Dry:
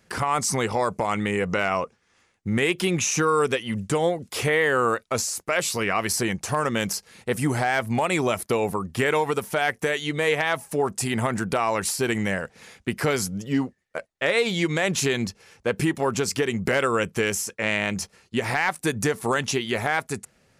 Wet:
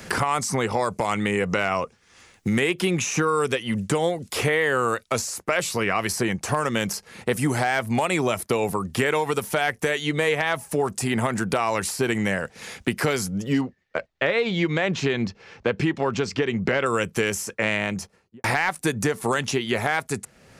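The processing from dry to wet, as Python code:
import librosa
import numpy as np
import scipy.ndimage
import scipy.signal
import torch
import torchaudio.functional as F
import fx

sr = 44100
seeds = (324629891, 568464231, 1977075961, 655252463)

y = fx.air_absorb(x, sr, metres=180.0, at=(13.61, 16.86))
y = fx.studio_fade_out(y, sr, start_s=17.74, length_s=0.7)
y = fx.band_squash(y, sr, depth_pct=70)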